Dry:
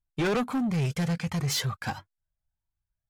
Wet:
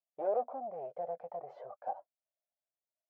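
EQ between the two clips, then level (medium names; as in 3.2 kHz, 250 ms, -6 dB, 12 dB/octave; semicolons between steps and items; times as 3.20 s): Butterworth band-pass 630 Hz, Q 3.2; +5.5 dB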